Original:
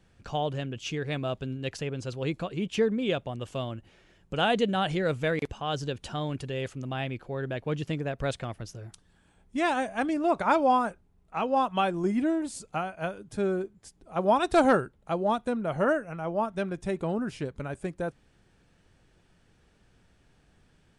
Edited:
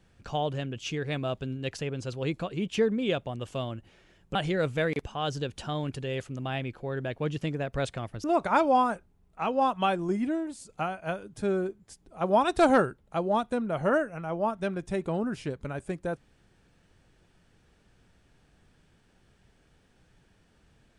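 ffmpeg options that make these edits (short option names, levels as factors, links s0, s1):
-filter_complex "[0:a]asplit=4[s0][s1][s2][s3];[s0]atrim=end=4.352[s4];[s1]atrim=start=4.808:end=8.702[s5];[s2]atrim=start=10.188:end=12.64,asetpts=PTS-STARTPTS,afade=t=out:st=1.692:d=0.76:silence=0.421697[s6];[s3]atrim=start=12.64,asetpts=PTS-STARTPTS,afade=t=in:d=0.004:c=hsin:silence=0.421697[s7];[s4][s5]acrossfade=d=0.004:c1=hsin:c2=hsin[s8];[s6][s7]concat=n=2:v=0:a=1[s9];[s8][s9]acrossfade=d=0.004:c1=hsin:c2=hsin"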